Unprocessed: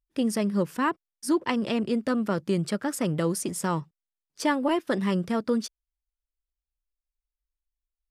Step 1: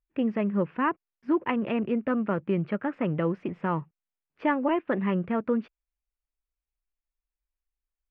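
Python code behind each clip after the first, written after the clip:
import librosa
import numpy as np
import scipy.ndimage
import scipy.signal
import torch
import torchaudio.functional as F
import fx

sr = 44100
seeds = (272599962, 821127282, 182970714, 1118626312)

y = scipy.signal.sosfilt(scipy.signal.cheby1(4, 1.0, 2600.0, 'lowpass', fs=sr, output='sos'), x)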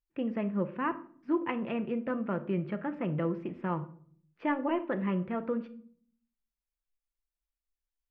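y = fx.room_shoebox(x, sr, seeds[0], volume_m3=680.0, walls='furnished', distance_m=0.79)
y = y * librosa.db_to_amplitude(-6.0)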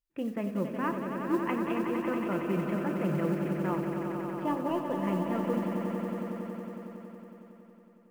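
y = fx.spec_box(x, sr, start_s=4.32, length_s=0.66, low_hz=1200.0, high_hz=2500.0, gain_db=-11)
y = fx.echo_swell(y, sr, ms=92, loudest=5, wet_db=-8.5)
y = fx.mod_noise(y, sr, seeds[1], snr_db=30)
y = y * librosa.db_to_amplitude(-1.0)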